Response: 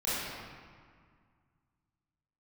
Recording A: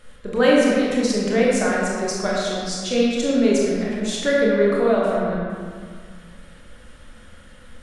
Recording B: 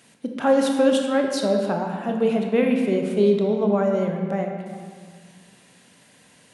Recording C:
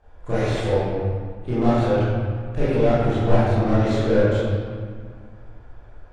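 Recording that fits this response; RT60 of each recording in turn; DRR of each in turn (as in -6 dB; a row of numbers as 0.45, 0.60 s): C; 1.9, 1.9, 1.9 s; -5.0, 2.5, -12.0 dB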